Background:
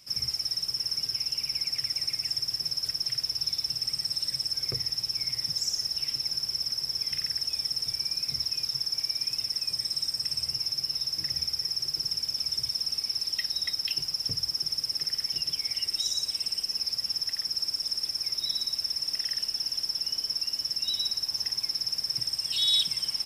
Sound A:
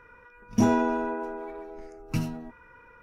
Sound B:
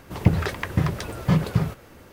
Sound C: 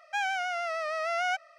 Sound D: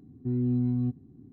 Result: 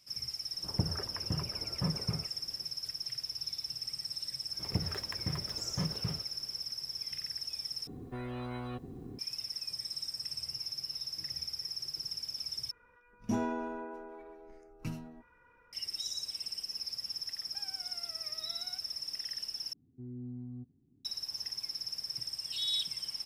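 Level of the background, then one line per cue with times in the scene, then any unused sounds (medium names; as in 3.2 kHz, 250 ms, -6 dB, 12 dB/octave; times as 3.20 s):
background -9 dB
0.53 s: add B -14 dB + low-pass 1.6 kHz 24 dB/octave
4.49 s: add B -15.5 dB + dead-time distortion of 0.076 ms
7.87 s: replace with D -8.5 dB + spectrum-flattening compressor 4:1
12.71 s: replace with A -11 dB
17.42 s: add C -14 dB + compression, threshold -39 dBFS
19.73 s: replace with D -16.5 dB + low-pass 1 kHz 6 dB/octave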